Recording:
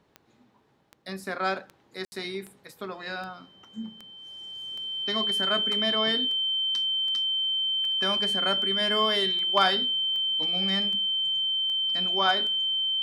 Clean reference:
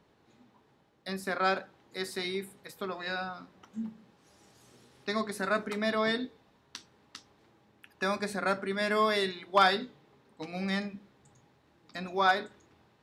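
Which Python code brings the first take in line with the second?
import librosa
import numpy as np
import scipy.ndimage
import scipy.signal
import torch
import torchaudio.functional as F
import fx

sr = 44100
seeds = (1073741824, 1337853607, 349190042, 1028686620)

y = fx.fix_declick_ar(x, sr, threshold=10.0)
y = fx.notch(y, sr, hz=3100.0, q=30.0)
y = fx.fix_ambience(y, sr, seeds[0], print_start_s=0.56, print_end_s=1.06, start_s=2.05, end_s=2.12)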